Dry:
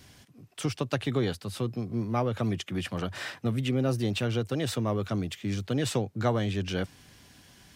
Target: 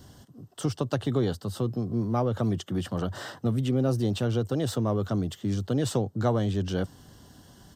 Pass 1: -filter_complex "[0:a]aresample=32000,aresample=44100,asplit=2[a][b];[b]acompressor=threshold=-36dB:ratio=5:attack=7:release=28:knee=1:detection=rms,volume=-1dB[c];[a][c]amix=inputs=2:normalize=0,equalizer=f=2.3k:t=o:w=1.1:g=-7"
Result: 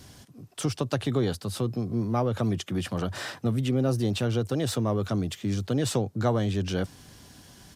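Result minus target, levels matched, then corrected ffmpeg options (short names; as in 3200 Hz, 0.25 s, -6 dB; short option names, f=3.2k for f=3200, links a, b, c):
4000 Hz band +3.0 dB
-filter_complex "[0:a]aresample=32000,aresample=44100,asplit=2[a][b];[b]acompressor=threshold=-36dB:ratio=5:attack=7:release=28:knee=1:detection=rms,asuperstop=centerf=5200:order=12:qfactor=0.88,volume=-1dB[c];[a][c]amix=inputs=2:normalize=0,equalizer=f=2.3k:t=o:w=1.1:g=-7"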